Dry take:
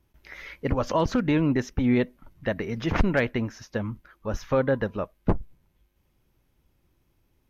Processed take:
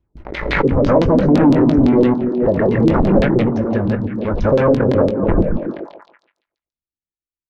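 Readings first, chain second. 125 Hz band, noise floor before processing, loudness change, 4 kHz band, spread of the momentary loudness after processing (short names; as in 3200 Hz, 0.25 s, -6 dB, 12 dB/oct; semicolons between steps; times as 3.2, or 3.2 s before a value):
+11.0 dB, -70 dBFS, +12.0 dB, +6.0 dB, 9 LU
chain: reverse delay 0.107 s, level 0 dB; gate -55 dBFS, range -35 dB; bell 2900 Hz -13 dB 2.6 oct; sample leveller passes 3; LFO low-pass saw down 5.9 Hz 300–4200 Hz; doubler 21 ms -11 dB; delay with a stepping band-pass 0.142 s, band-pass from 180 Hz, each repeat 0.7 oct, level -3.5 dB; backwards sustainer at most 50 dB/s; gain -1 dB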